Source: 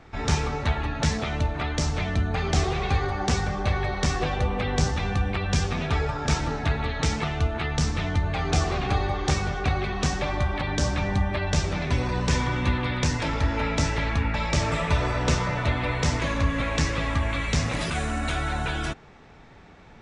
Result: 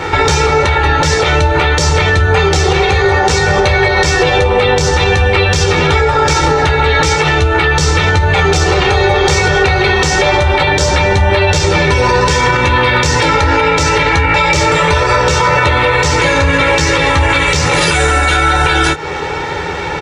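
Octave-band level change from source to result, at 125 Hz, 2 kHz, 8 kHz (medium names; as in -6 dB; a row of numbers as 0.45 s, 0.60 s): +11.5 dB, +18.5 dB, +15.5 dB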